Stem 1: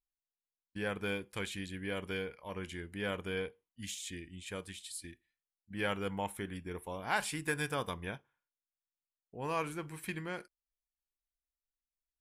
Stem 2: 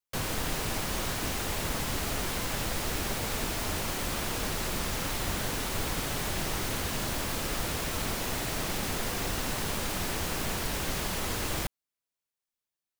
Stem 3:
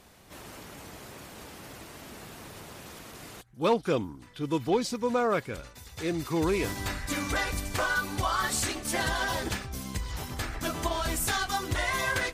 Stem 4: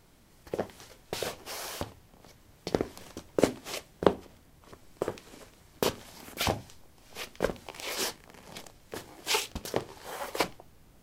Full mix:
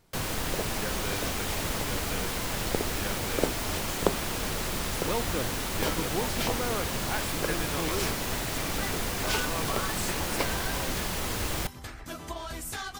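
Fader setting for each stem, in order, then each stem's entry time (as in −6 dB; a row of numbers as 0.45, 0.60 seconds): −2.0, +0.5, −7.5, −3.5 decibels; 0.00, 0.00, 1.45, 0.00 seconds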